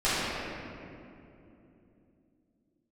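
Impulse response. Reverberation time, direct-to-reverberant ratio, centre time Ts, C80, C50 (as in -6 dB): 2.9 s, -14.5 dB, 193 ms, -2.5 dB, -5.0 dB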